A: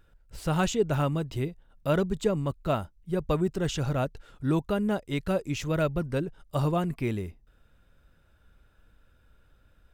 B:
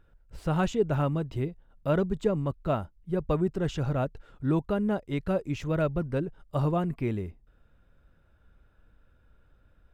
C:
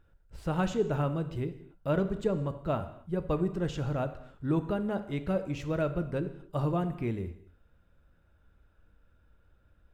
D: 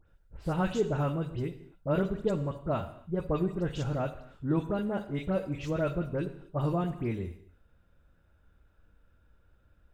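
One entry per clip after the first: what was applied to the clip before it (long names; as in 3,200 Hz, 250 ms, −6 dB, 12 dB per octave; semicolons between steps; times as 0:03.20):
high-shelf EQ 3,100 Hz −12 dB
reverb whose tail is shaped and stops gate 300 ms falling, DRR 9 dB; level −3 dB
all-pass dispersion highs, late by 79 ms, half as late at 2,500 Hz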